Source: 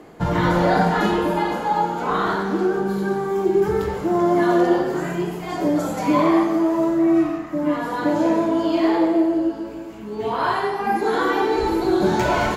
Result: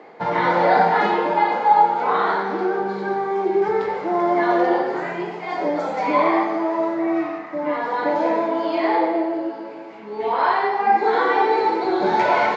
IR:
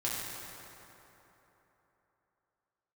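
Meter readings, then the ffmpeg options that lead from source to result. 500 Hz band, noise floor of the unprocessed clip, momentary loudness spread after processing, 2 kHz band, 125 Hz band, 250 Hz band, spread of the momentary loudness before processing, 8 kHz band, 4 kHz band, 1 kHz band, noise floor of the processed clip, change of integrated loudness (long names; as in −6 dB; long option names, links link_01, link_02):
0.0 dB, −33 dBFS, 10 LU, +2.5 dB, −11.0 dB, −5.5 dB, 7 LU, can't be measured, −2.0 dB, +4.5 dB, −35 dBFS, 0.0 dB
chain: -af "highpass=300,equalizer=frequency=310:width_type=q:width=4:gain=-5,equalizer=frequency=490:width_type=q:width=4:gain=4,equalizer=frequency=840:width_type=q:width=4:gain=7,equalizer=frequency=2100:width_type=q:width=4:gain=7,equalizer=frequency=3000:width_type=q:width=4:gain=-4,lowpass=frequency=4800:width=0.5412,lowpass=frequency=4800:width=1.3066"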